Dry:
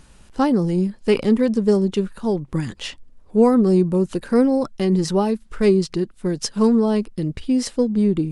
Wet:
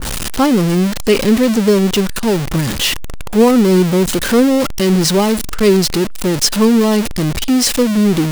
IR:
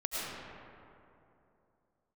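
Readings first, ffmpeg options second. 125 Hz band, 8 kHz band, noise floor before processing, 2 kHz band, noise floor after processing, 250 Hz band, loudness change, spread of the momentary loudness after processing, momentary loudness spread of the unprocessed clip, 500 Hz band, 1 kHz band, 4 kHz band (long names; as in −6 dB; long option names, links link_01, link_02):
+6.5 dB, +16.0 dB, −50 dBFS, +13.0 dB, −21 dBFS, +5.5 dB, +6.0 dB, 6 LU, 9 LU, +5.0 dB, +7.0 dB, +15.0 dB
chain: -af "aeval=exprs='val(0)+0.5*0.112*sgn(val(0))':channel_layout=same,adynamicequalizer=threshold=0.02:dfrequency=2000:dqfactor=0.7:tfrequency=2000:tqfactor=0.7:attack=5:release=100:ratio=0.375:range=2.5:mode=boostabove:tftype=highshelf,volume=3dB"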